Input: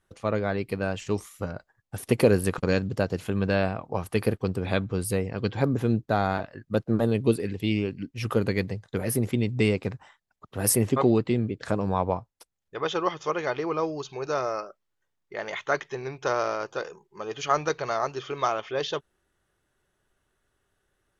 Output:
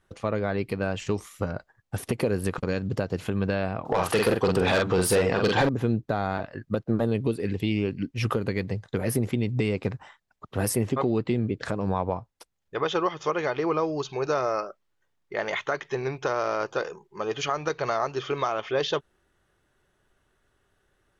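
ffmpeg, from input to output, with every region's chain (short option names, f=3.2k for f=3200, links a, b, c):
-filter_complex "[0:a]asettb=1/sr,asplit=3[a][b][c];[a]atrim=end=3.854[d];[b]atrim=start=3.85:end=5.69,asetpts=PTS-STARTPTS,afade=t=in:d=0.004:c=qsin,afade=t=out:st=1.836:d=0.004:c=qsin,asplit=2[e][f];[f]adelay=44,volume=-6dB[g];[e][g]amix=inputs=2:normalize=0,atrim=end_sample=81144,asplit=2[h][i];[i]highpass=f=720:p=1,volume=25dB,asoftclip=type=tanh:threshold=-8dB[j];[h][j]amix=inputs=2:normalize=0,lowpass=f=7.7k:p=1,volume=-6dB,equalizer=f=2.2k:t=o:w=0.29:g=-5[k];[c]atrim=start=5.686[l];[d][k]acrossfade=d=0.004:c1=hsin:c2=qsin[m];[m][l]acrossfade=d=0.004:c1=qsin:c2=hsin,acompressor=threshold=-26dB:ratio=2.5,highshelf=f=7.3k:g=-7.5,alimiter=limit=-18.5dB:level=0:latency=1:release=214,volume=5dB"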